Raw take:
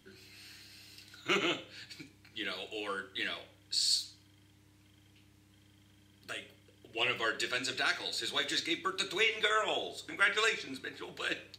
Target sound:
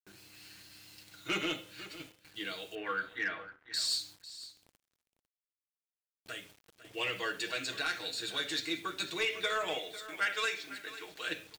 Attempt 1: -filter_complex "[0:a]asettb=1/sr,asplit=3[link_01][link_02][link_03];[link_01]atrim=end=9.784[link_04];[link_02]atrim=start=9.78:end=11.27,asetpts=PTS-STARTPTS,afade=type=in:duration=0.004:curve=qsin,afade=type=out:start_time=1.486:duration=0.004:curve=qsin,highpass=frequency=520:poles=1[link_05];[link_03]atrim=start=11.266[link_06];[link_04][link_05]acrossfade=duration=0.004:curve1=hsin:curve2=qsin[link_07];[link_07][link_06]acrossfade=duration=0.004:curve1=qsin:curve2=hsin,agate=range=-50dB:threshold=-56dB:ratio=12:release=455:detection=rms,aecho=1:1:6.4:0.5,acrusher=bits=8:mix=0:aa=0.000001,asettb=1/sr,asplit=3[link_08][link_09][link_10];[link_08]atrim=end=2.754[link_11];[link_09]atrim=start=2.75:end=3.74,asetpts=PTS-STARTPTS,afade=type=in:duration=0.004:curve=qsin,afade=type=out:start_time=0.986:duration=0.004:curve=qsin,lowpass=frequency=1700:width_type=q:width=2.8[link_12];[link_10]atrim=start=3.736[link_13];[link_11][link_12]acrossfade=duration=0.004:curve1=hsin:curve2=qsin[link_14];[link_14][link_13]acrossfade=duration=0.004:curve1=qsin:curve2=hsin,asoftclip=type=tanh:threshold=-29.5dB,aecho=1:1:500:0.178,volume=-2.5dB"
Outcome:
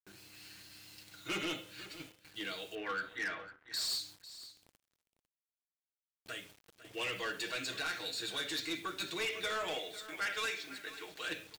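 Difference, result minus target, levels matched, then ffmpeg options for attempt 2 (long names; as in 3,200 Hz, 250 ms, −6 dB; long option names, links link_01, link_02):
soft clipping: distortion +9 dB
-filter_complex "[0:a]asettb=1/sr,asplit=3[link_01][link_02][link_03];[link_01]atrim=end=9.784[link_04];[link_02]atrim=start=9.78:end=11.27,asetpts=PTS-STARTPTS,afade=type=in:duration=0.004:curve=qsin,afade=type=out:start_time=1.486:duration=0.004:curve=qsin,highpass=frequency=520:poles=1[link_05];[link_03]atrim=start=11.266[link_06];[link_04][link_05]acrossfade=duration=0.004:curve1=hsin:curve2=qsin[link_07];[link_07][link_06]acrossfade=duration=0.004:curve1=qsin:curve2=hsin,agate=range=-50dB:threshold=-56dB:ratio=12:release=455:detection=rms,aecho=1:1:6.4:0.5,acrusher=bits=8:mix=0:aa=0.000001,asettb=1/sr,asplit=3[link_08][link_09][link_10];[link_08]atrim=end=2.754[link_11];[link_09]atrim=start=2.75:end=3.74,asetpts=PTS-STARTPTS,afade=type=in:duration=0.004:curve=qsin,afade=type=out:start_time=0.986:duration=0.004:curve=qsin,lowpass=frequency=1700:width_type=q:width=2.8[link_12];[link_10]atrim=start=3.736[link_13];[link_11][link_12]acrossfade=duration=0.004:curve1=hsin:curve2=qsin[link_14];[link_14][link_13]acrossfade=duration=0.004:curve1=qsin:curve2=hsin,asoftclip=type=tanh:threshold=-21dB,aecho=1:1:500:0.178,volume=-2.5dB"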